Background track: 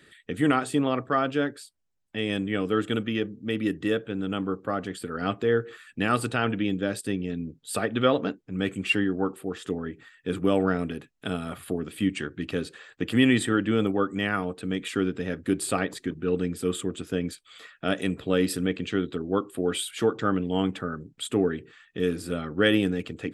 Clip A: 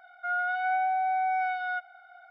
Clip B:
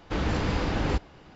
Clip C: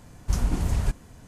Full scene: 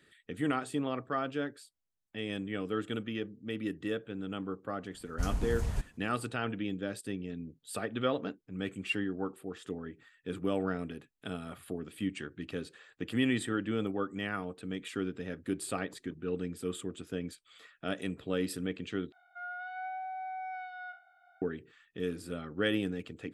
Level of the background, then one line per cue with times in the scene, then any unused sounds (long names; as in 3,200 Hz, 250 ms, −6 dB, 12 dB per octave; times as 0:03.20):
background track −9 dB
0:04.90: mix in C −8.5 dB + downward expander −43 dBFS
0:19.12: overwrite with A −12.5 dB + peak hold with a decay on every bin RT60 0.36 s
not used: B